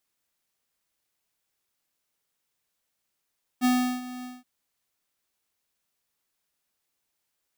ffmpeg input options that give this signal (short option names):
-f lavfi -i "aevalsrc='0.0944*(2*lt(mod(250*t,1),0.5)-1)':d=0.825:s=44100,afade=t=in:d=0.039,afade=t=out:st=0.039:d=0.36:silence=0.141,afade=t=out:st=0.63:d=0.195"